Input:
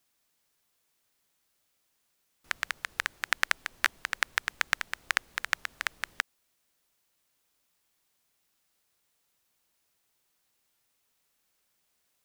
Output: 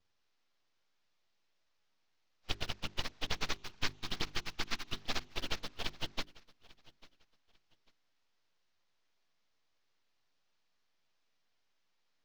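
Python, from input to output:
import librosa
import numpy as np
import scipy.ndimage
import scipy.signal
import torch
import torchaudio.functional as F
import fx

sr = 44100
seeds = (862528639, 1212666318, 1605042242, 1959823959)

p1 = fx.partial_stretch(x, sr, pct=91)
p2 = fx.env_flanger(p1, sr, rest_ms=11.1, full_db=-33.0)
p3 = np.abs(p2)
p4 = scipy.signal.sosfilt(scipy.signal.cheby2(4, 40, 10000.0, 'lowpass', fs=sr, output='sos'), p3)
p5 = fx.hum_notches(p4, sr, base_hz=50, count=8)
p6 = fx.quant_dither(p5, sr, seeds[0], bits=8, dither='none')
p7 = p5 + (p6 * 10.0 ** (-11.0 / 20.0))
p8 = fx.peak_eq(p7, sr, hz=570.0, db=-9.0, octaves=0.44, at=(3.53, 4.97))
p9 = p8 + fx.echo_feedback(p8, sr, ms=845, feedback_pct=26, wet_db=-22.0, dry=0)
y = p9 * 10.0 ** (5.0 / 20.0)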